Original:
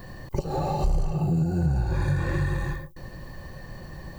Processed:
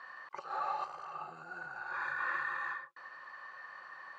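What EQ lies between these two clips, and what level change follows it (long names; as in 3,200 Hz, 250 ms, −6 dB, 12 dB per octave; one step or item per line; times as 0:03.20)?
four-pole ladder band-pass 1,400 Hz, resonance 70%
+9.5 dB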